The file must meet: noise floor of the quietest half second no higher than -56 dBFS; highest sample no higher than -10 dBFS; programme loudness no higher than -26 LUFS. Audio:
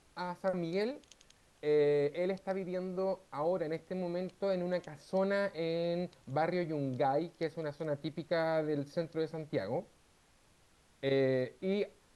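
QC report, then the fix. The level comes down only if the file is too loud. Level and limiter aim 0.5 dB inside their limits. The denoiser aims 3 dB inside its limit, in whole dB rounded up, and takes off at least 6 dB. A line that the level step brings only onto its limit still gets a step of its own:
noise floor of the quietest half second -67 dBFS: pass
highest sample -20.0 dBFS: pass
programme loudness -35.0 LUFS: pass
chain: none needed

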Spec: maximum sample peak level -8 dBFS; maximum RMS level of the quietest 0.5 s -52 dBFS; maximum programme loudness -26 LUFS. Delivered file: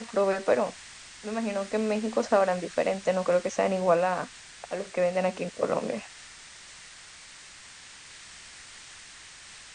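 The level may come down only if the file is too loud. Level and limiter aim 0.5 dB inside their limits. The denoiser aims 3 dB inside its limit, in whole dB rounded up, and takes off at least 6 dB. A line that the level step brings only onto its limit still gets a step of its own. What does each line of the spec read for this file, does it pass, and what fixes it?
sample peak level -10.0 dBFS: pass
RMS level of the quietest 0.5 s -48 dBFS: fail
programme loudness -27.5 LUFS: pass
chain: noise reduction 7 dB, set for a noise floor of -48 dBFS

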